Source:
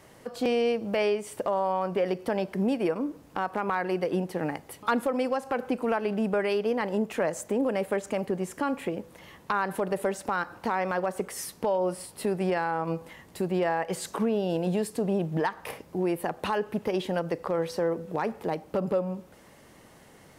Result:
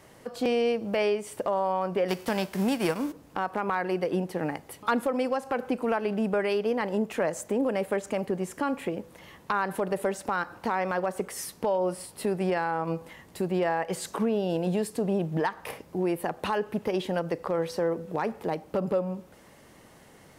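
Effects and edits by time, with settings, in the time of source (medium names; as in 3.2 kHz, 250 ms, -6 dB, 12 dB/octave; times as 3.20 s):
2.08–3.11 s: formants flattened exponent 0.6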